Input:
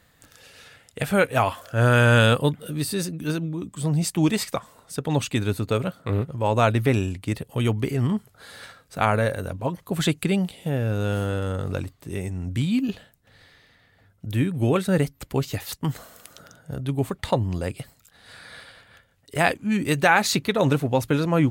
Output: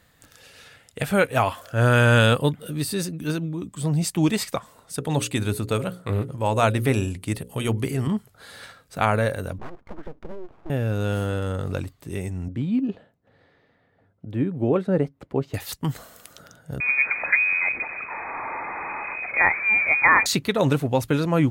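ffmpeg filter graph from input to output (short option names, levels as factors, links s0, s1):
-filter_complex "[0:a]asettb=1/sr,asplit=3[s0][s1][s2];[s0]atrim=end=4.944[s3];[s1]atrim=start=4.94:end=8.08,asetpts=PTS-STARTPTS,afade=t=in:d=0.004:c=qsin,afade=t=out:st=3.136:d=0.004:c=qsin,equalizer=f=9900:t=o:w=0.71:g=8,bandreject=f=60:t=h:w=6,bandreject=f=120:t=h:w=6,bandreject=f=180:t=h:w=6,bandreject=f=240:t=h:w=6,bandreject=f=300:t=h:w=6,bandreject=f=360:t=h:w=6,bandreject=f=420:t=h:w=6,bandreject=f=480:t=h:w=6,bandreject=f=540:t=h:w=6[s4];[s2]atrim=start=8.076[s5];[s3][s4]acrossfade=d=0.004:c1=hsin:c2=qsin[s6];[s6][s5]acrossfade=d=0.004:c1=qsin:c2=hsin,asettb=1/sr,asplit=3[s7][s8][s9];[s7]atrim=end=9.584[s10];[s8]atrim=start=9.58:end=10.7,asetpts=PTS-STARTPTS,afade=t=in:d=0.004:c=qsin,afade=t=out:st=1.116:d=0.004:c=qsin,lowpass=f=1200:w=0.5412,lowpass=f=1200:w=1.3066,acompressor=threshold=0.0316:ratio=5:attack=3.2:release=140:knee=1:detection=peak,aeval=exprs='abs(val(0))':c=same[s11];[s9]atrim=start=10.696[s12];[s10][s11]acrossfade=d=0.004:c1=hsin:c2=qsin[s13];[s13][s12]acrossfade=d=0.004:c1=qsin:c2=hsin,asettb=1/sr,asplit=3[s14][s15][s16];[s14]atrim=end=12.484[s17];[s15]atrim=start=12.48:end=15.54,asetpts=PTS-STARTPTS,afade=t=in:d=0.004:c=qsin,afade=t=out:st=3.056:d=0.004:c=qsin,bandpass=f=490:t=q:w=0.7,lowshelf=f=330:g=5[s18];[s16]atrim=start=15.536[s19];[s17][s18]acrossfade=d=0.004:c1=hsin:c2=qsin[s20];[s20][s19]acrossfade=d=0.004:c1=qsin:c2=hsin,asettb=1/sr,asplit=3[s21][s22][s23];[s21]atrim=end=16.804[s24];[s22]atrim=start=16.8:end=20.26,asetpts=PTS-STARTPTS,afade=t=in:d=0.004:c=qsin,afade=t=out:st=3.456:d=0.004:c=qsin,aeval=exprs='val(0)+0.5*0.0631*sgn(val(0))':c=same,highpass=48,lowpass=f=2200:t=q:w=0.5098,lowpass=f=2200:t=q:w=0.6013,lowpass=f=2200:t=q:w=0.9,lowpass=f=2200:t=q:w=2.563,afreqshift=-2600[s25];[s23]atrim=start=20.256[s26];[s24][s25]acrossfade=d=0.004:c1=hsin:c2=qsin[s27];[s27][s26]acrossfade=d=0.004:c1=qsin:c2=hsin"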